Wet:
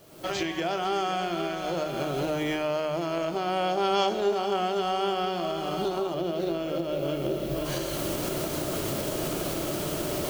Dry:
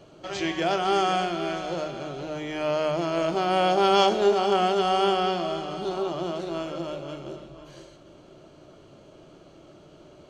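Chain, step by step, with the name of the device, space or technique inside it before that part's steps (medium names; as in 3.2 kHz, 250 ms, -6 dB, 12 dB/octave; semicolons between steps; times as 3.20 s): cheap recorder with automatic gain (white noise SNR 30 dB; recorder AGC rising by 38 dB/s); 6.14–7.65 s: graphic EQ 500/1000/8000 Hz +4/-7/-7 dB; trim -5 dB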